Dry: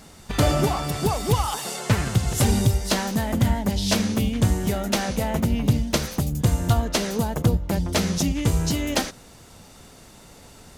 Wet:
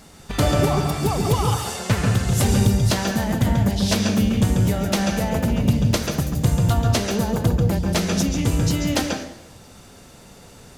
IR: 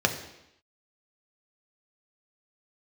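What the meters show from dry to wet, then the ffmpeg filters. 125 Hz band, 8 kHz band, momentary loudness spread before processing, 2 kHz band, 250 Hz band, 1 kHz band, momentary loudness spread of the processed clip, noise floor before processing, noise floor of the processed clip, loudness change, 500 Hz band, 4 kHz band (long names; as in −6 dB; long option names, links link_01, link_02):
+3.5 dB, +1.0 dB, 4 LU, +2.0 dB, +3.0 dB, +1.5 dB, 4 LU, −48 dBFS, −46 dBFS, +2.5 dB, +2.0 dB, +1.0 dB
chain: -filter_complex "[0:a]asplit=2[link_01][link_02];[1:a]atrim=start_sample=2205,adelay=137[link_03];[link_02][link_03]afir=irnorm=-1:irlink=0,volume=-16dB[link_04];[link_01][link_04]amix=inputs=2:normalize=0"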